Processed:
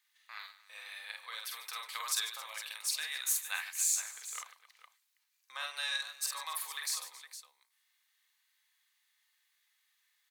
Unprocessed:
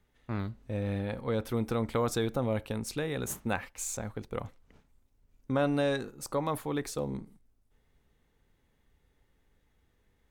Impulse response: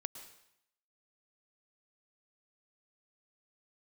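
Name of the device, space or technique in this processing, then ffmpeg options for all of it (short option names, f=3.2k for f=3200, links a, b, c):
headphones lying on a table: -af "highpass=180,highpass=f=1.3k:w=0.5412,highpass=f=1.3k:w=1.3066,equalizer=f=4.3k:t=o:w=0.39:g=6,highshelf=f=5.5k:g=7.5,bandreject=f=1.4k:w=6.9,aecho=1:1:47|145|270|461:0.668|0.2|0.119|0.251"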